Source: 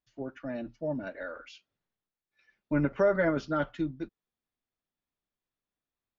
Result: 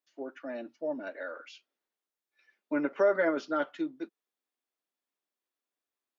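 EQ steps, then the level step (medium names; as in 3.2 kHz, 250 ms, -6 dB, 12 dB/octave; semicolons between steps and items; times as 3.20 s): high-pass 280 Hz 24 dB/octave; 0.0 dB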